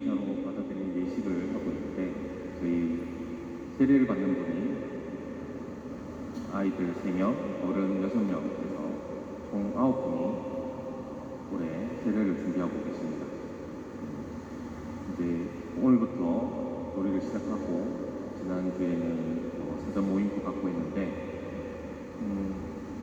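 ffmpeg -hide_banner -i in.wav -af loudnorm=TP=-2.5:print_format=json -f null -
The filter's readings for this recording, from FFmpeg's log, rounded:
"input_i" : "-32.4",
"input_tp" : "-13.4",
"input_lra" : "3.7",
"input_thresh" : "-42.4",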